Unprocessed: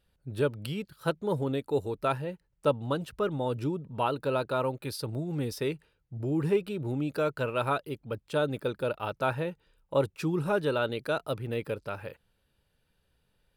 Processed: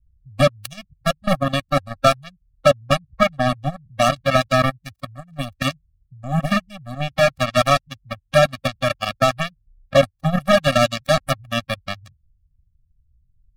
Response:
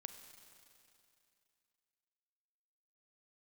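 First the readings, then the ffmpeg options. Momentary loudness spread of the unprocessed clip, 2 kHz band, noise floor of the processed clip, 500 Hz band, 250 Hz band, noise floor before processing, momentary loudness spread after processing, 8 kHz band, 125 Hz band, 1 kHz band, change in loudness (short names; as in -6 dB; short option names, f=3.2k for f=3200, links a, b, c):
8 LU, +14.0 dB, -67 dBFS, +9.5 dB, +7.5 dB, -75 dBFS, 15 LU, +16.5 dB, +9.5 dB, +12.5 dB, +11.0 dB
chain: -filter_complex "[0:a]acrossover=split=110[a][b];[a]acompressor=threshold=-60dB:ratio=5[c];[b]acrusher=bits=3:mix=0:aa=0.5[d];[c][d]amix=inputs=2:normalize=0,alimiter=level_in=14.5dB:limit=-1dB:release=50:level=0:latency=1,afftfilt=real='re*eq(mod(floor(b*sr/1024/270),2),0)':imag='im*eq(mod(floor(b*sr/1024/270),2),0)':win_size=1024:overlap=0.75,volume=1.5dB"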